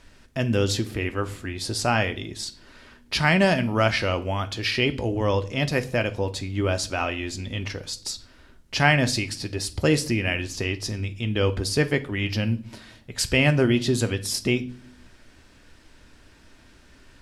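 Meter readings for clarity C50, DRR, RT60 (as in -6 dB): 18.5 dB, 9.5 dB, not exponential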